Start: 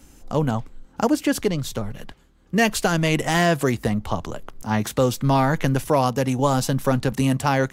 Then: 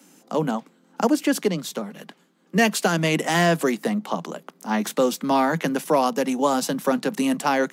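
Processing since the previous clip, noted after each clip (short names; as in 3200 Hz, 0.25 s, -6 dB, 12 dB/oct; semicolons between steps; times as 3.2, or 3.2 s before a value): steep high-pass 160 Hz 96 dB/oct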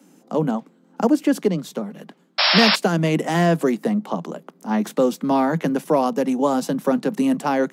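tilt shelf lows +5 dB; painted sound noise, 2.38–2.76, 530–5600 Hz -16 dBFS; gain -1 dB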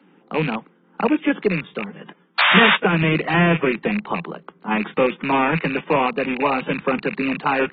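rattling part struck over -28 dBFS, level -19 dBFS; fifteen-band EQ 100 Hz -11 dB, 250 Hz -10 dB, 630 Hz -11 dB, 4000 Hz -9 dB, 10000 Hz +6 dB; gain +5.5 dB; AAC 16 kbps 32000 Hz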